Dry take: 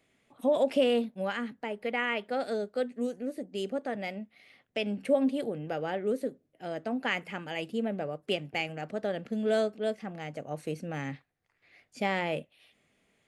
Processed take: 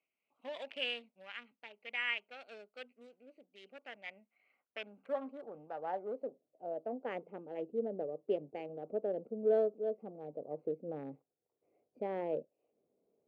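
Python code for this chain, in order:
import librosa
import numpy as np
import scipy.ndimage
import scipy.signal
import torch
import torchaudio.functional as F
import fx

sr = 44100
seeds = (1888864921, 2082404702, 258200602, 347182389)

y = fx.wiener(x, sr, points=25)
y = fx.filter_sweep_bandpass(y, sr, from_hz=2600.0, to_hz=450.0, start_s=3.67, end_s=7.26, q=2.3)
y = fx.am_noise(y, sr, seeds[0], hz=5.7, depth_pct=60)
y = F.gain(torch.from_numpy(y), 3.5).numpy()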